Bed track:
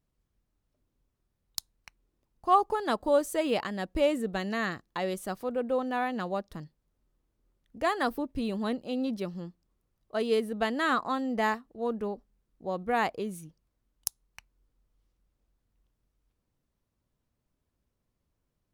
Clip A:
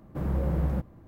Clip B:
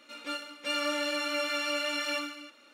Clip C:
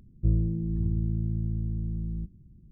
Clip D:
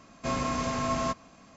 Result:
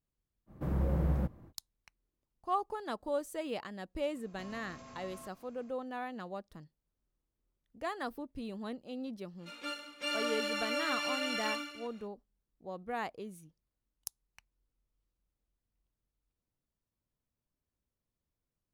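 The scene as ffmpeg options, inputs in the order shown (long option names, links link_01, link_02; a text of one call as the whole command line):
ffmpeg -i bed.wav -i cue0.wav -i cue1.wav -i cue2.wav -i cue3.wav -filter_complex "[0:a]volume=-10dB[link_01];[4:a]acompressor=threshold=-36dB:ratio=6:attack=3.2:release=140:knee=1:detection=peak[link_02];[1:a]atrim=end=1.07,asetpts=PTS-STARTPTS,volume=-3.5dB,afade=type=in:duration=0.05,afade=type=out:start_time=1.02:duration=0.05,adelay=460[link_03];[link_02]atrim=end=1.56,asetpts=PTS-STARTPTS,volume=-12dB,afade=type=in:duration=0.004:curve=hsin,afade=type=out:start_time=1.556:duration=0.004:curve=hsin,adelay=4150[link_04];[2:a]atrim=end=2.73,asetpts=PTS-STARTPTS,volume=-4dB,afade=type=in:duration=0.1,afade=type=out:start_time=2.63:duration=0.1,adelay=9370[link_05];[link_01][link_03][link_04][link_05]amix=inputs=4:normalize=0" out.wav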